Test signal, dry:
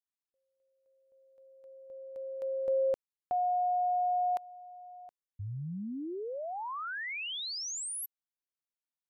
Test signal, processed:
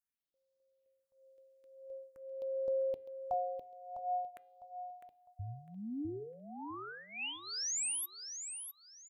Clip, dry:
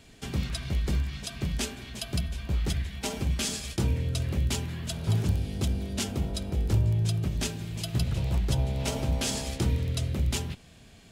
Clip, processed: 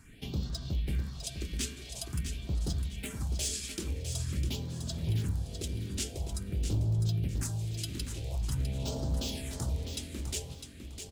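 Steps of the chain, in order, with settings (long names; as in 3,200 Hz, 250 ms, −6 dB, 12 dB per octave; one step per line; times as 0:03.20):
hum removal 404.2 Hz, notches 12
dynamic equaliser 8,100 Hz, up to +5 dB, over −51 dBFS, Q 1.1
in parallel at +2 dB: downward compressor 6 to 1, threshold −40 dBFS
on the sum: hard clipping −19.5 dBFS
all-pass phaser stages 4, 0.47 Hz, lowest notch 120–2,300 Hz
on a send: repeating echo 654 ms, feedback 26%, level −8 dB
on the sum: feedback delay network reverb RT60 0.43 s, low-frequency decay 1×, high-frequency decay 0.25×, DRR 20 dB
level −7 dB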